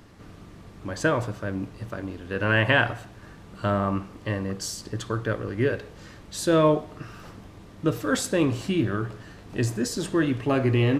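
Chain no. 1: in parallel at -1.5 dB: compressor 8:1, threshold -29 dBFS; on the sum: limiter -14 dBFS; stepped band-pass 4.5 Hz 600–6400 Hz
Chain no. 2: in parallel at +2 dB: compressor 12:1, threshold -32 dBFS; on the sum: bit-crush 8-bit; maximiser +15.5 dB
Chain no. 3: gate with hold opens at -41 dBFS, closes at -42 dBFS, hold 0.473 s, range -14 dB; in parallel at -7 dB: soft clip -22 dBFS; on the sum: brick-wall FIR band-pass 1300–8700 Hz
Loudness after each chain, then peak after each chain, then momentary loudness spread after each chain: -37.5, -12.0, -30.0 LUFS; -18.5, -1.0, -8.0 dBFS; 21, 13, 21 LU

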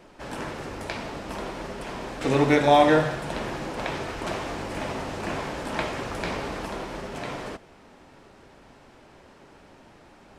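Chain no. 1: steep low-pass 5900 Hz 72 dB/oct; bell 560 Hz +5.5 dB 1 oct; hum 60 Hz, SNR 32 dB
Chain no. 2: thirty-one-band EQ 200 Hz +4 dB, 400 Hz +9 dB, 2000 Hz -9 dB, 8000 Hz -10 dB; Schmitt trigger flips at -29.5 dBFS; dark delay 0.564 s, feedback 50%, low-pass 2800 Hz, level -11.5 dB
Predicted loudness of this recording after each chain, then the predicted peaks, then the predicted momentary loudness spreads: -24.0, -27.5 LUFS; -2.5, -19.5 dBFS; 17, 12 LU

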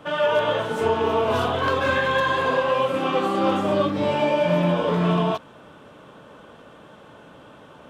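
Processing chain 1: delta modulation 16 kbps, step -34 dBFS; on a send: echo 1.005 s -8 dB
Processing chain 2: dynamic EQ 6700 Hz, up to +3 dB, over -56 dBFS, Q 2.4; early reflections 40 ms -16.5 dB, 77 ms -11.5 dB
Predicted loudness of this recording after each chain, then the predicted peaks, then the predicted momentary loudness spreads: -24.5, -21.5 LUFS; -10.5, -8.5 dBFS; 18, 3 LU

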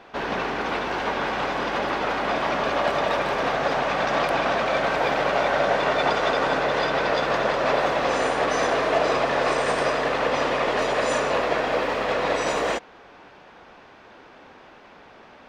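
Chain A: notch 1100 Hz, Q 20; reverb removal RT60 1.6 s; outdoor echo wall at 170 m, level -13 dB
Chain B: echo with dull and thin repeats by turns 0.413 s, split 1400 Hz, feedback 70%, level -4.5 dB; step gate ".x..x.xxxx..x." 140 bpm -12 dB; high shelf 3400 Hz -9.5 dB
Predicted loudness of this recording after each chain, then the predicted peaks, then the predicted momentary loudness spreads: -26.5, -25.5 LUFS; -10.0, -8.0 dBFS; 5, 14 LU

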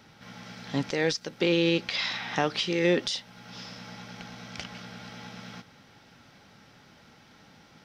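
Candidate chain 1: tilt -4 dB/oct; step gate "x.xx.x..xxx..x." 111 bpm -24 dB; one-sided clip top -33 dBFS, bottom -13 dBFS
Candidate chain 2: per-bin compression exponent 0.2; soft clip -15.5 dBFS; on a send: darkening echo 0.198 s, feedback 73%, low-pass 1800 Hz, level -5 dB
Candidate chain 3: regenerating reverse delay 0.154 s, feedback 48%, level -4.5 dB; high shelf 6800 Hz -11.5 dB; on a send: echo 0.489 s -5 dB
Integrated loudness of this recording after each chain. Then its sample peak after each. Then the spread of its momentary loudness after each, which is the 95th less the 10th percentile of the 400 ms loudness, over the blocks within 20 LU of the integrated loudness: -34.5, -21.5, -27.0 LUFS; -13.5, -10.5, -9.5 dBFS; 21, 3, 19 LU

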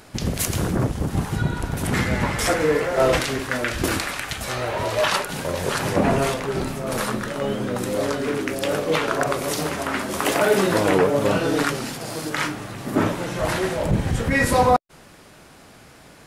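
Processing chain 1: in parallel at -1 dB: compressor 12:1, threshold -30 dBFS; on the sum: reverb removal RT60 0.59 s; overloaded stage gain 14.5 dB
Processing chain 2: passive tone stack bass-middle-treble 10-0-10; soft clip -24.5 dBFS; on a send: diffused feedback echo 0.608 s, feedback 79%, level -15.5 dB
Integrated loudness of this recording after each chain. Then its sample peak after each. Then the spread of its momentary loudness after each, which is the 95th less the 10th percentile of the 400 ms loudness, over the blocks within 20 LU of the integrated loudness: -23.0, -32.5 LUFS; -14.5, -22.5 dBFS; 6, 7 LU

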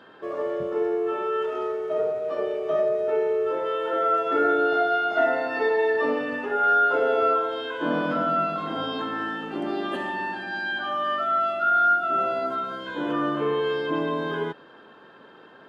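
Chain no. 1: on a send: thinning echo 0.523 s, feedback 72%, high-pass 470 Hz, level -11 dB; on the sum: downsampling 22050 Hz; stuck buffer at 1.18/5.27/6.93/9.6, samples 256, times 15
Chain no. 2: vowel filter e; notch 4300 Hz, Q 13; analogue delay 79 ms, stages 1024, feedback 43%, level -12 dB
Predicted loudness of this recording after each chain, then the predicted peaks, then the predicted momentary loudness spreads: -24.5, -36.0 LUFS; -9.5, -18.5 dBFS; 9, 11 LU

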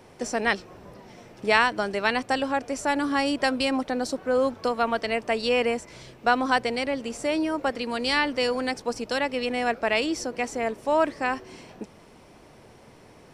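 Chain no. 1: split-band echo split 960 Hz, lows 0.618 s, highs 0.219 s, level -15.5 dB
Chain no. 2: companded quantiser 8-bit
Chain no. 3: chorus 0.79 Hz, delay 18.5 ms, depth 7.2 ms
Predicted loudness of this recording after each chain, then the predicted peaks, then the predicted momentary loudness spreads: -25.5, -25.5, -28.5 LUFS; -4.5, -4.5, -6.5 dBFS; 15, 7, 7 LU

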